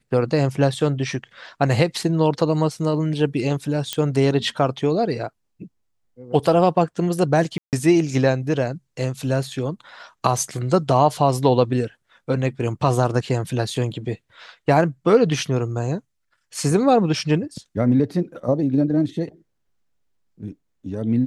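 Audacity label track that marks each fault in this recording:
3.930000	3.930000	pop -8 dBFS
7.580000	7.730000	gap 0.148 s

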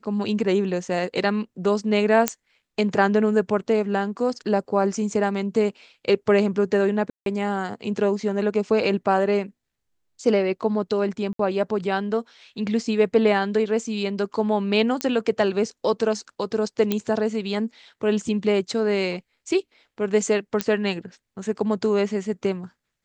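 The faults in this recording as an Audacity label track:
2.280000	2.280000	pop -3 dBFS
7.100000	7.260000	gap 0.162 s
11.330000	11.390000	gap 63 ms
15.010000	15.010000	pop -9 dBFS
16.920000	16.920000	pop -9 dBFS
20.610000	20.610000	pop -6 dBFS

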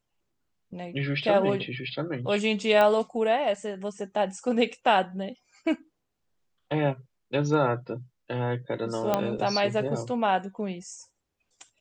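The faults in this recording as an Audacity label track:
2.810000	2.810000	pop -12 dBFS
9.140000	9.140000	pop -10 dBFS

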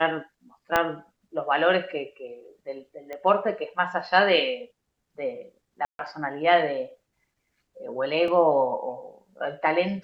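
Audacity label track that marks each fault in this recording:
0.760000	0.760000	pop -7 dBFS
3.130000	3.130000	pop -23 dBFS
5.850000	5.990000	gap 0.142 s
8.280000	8.280000	gap 2 ms

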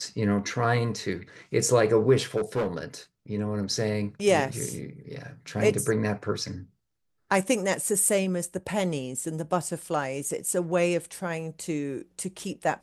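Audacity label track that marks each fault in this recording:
2.360000	2.840000	clipped -22.5 dBFS

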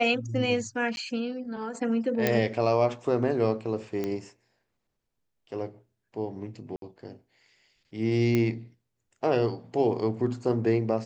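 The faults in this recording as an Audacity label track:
0.960000	0.970000	gap 11 ms
2.270000	2.270000	pop -9 dBFS
4.040000	4.040000	pop -18 dBFS
6.760000	6.820000	gap 62 ms
8.350000	8.350000	pop -13 dBFS

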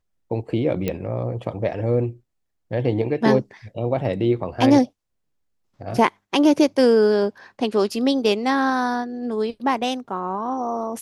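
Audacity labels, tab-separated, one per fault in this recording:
0.880000	0.880000	pop -11 dBFS

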